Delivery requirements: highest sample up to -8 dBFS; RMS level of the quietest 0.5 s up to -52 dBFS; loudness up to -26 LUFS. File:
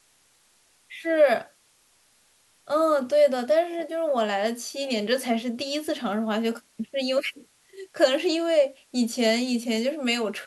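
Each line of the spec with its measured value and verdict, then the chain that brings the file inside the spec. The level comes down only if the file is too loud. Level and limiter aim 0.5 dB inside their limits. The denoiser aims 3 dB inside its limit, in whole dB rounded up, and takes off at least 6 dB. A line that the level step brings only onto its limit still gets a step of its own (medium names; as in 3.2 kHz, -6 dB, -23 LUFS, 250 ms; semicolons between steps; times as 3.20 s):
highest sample -7.0 dBFS: fail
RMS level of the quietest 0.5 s -63 dBFS: pass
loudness -25.0 LUFS: fail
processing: trim -1.5 dB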